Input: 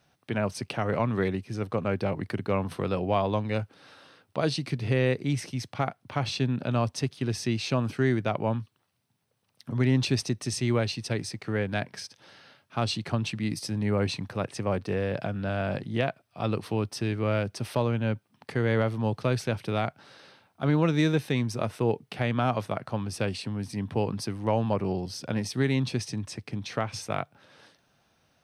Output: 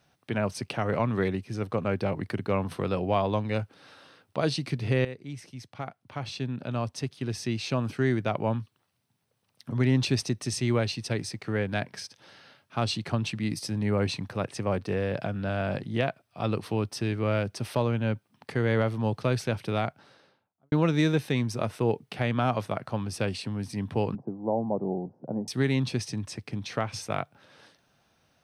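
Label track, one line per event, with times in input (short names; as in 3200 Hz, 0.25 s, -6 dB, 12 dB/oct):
5.050000	8.440000	fade in, from -13.5 dB
19.750000	20.720000	studio fade out
24.150000	25.480000	elliptic band-pass 140–810 Hz, stop band 60 dB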